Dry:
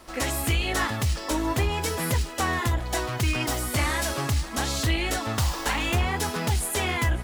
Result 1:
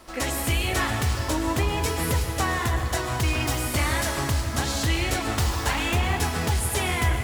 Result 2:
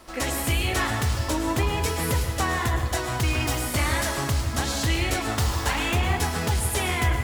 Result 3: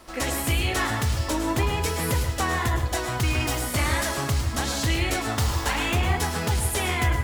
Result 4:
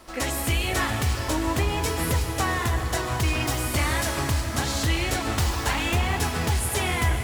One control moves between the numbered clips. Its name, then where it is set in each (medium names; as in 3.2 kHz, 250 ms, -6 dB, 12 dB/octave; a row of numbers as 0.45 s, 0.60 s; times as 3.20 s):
plate-style reverb, RT60: 2.5 s, 1.1 s, 0.5 s, 5.3 s